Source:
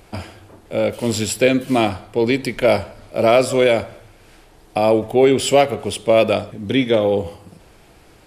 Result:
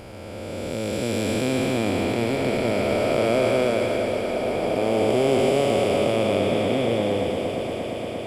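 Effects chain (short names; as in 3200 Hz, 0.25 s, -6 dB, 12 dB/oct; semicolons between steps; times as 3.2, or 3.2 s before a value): time blur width 0.902 s; swelling echo 0.116 s, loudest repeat 8, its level -16.5 dB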